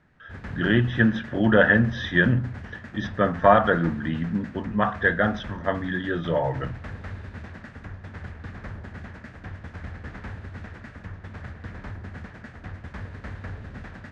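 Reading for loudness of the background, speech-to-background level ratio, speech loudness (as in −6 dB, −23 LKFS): −39.5 LKFS, 16.5 dB, −23.0 LKFS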